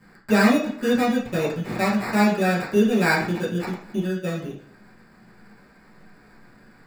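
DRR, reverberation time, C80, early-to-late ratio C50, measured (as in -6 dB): -8.5 dB, 0.50 s, 10.0 dB, 6.0 dB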